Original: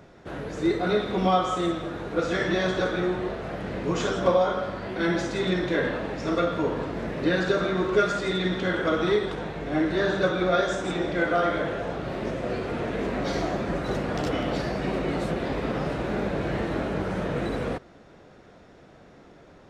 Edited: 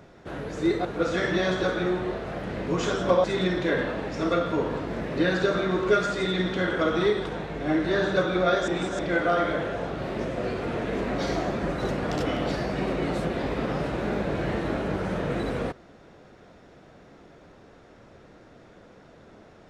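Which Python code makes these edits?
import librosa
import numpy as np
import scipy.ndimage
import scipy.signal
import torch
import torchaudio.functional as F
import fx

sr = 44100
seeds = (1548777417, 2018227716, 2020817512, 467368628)

y = fx.edit(x, sr, fx.cut(start_s=0.85, length_s=1.17),
    fx.cut(start_s=4.41, length_s=0.89),
    fx.reverse_span(start_s=10.74, length_s=0.31), tone=tone)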